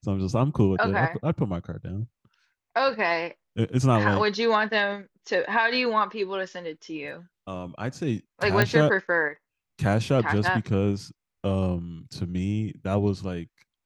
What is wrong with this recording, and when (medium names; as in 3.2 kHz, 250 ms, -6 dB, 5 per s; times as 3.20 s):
8.62 s: pop -7 dBFS